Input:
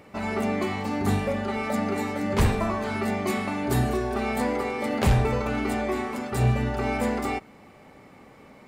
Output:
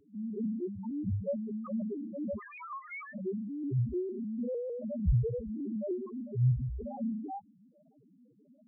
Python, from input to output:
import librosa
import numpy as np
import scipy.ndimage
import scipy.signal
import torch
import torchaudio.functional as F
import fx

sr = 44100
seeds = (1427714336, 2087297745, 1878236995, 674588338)

y = fx.highpass(x, sr, hz=1100.0, slope=24, at=(2.37, 3.13), fade=0.02)
y = fx.spec_topn(y, sr, count=1)
y = fx.vibrato_shape(y, sr, shape='saw_up', rate_hz=6.6, depth_cents=100.0)
y = y * librosa.db_to_amplitude(1.0)